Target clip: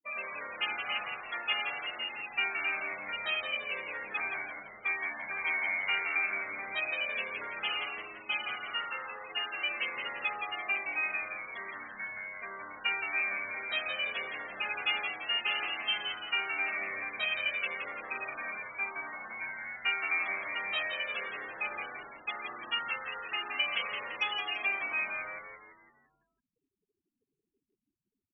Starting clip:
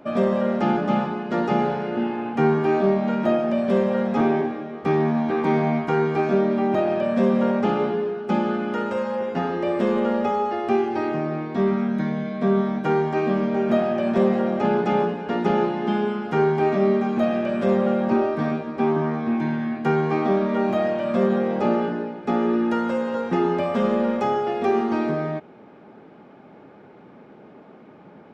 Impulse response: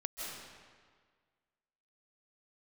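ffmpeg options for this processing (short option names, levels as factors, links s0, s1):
-filter_complex "[0:a]afftfilt=real='re*gte(hypot(re,im),0.0355)':imag='im*gte(hypot(re,im),0.0355)':win_size=1024:overlap=0.75,adynamicequalizer=threshold=0.00316:dfrequency=4300:dqfactor=1.3:tfrequency=4300:tqfactor=1.3:attack=5:release=100:ratio=0.375:range=2:mode=boostabove:tftype=bell,asplit=2[s0][s1];[s1]acompressor=threshold=0.02:ratio=8,volume=1.06[s2];[s0][s2]amix=inputs=2:normalize=0,asplit=2[s3][s4];[s4]asetrate=37084,aresample=44100,atempo=1.18921,volume=0.224[s5];[s3][s5]amix=inputs=2:normalize=0,highpass=f=2700:t=q:w=4.5,asplit=2[s6][s7];[s7]asplit=6[s8][s9][s10][s11][s12][s13];[s8]adelay=169,afreqshift=-96,volume=0.501[s14];[s9]adelay=338,afreqshift=-192,volume=0.234[s15];[s10]adelay=507,afreqshift=-288,volume=0.111[s16];[s11]adelay=676,afreqshift=-384,volume=0.0519[s17];[s12]adelay=845,afreqshift=-480,volume=0.0245[s18];[s13]adelay=1014,afreqshift=-576,volume=0.0115[s19];[s14][s15][s16][s17][s18][s19]amix=inputs=6:normalize=0[s20];[s6][s20]amix=inputs=2:normalize=0"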